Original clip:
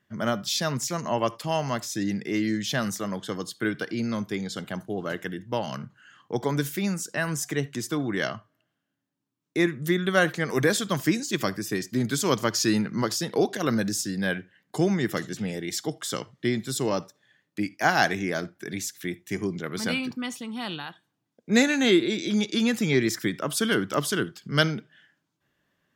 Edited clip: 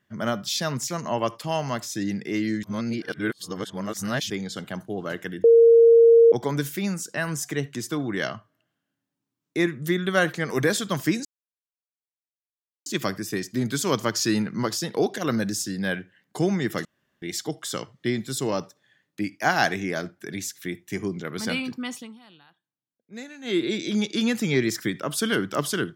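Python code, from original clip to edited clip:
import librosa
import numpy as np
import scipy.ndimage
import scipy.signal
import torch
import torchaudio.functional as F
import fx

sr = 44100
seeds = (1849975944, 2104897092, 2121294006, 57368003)

y = fx.edit(x, sr, fx.reverse_span(start_s=2.63, length_s=1.67),
    fx.bleep(start_s=5.44, length_s=0.88, hz=462.0, db=-10.0),
    fx.insert_silence(at_s=11.25, length_s=1.61),
    fx.room_tone_fill(start_s=15.24, length_s=0.37),
    fx.fade_down_up(start_s=20.35, length_s=1.7, db=-19.0, fade_s=0.23), tone=tone)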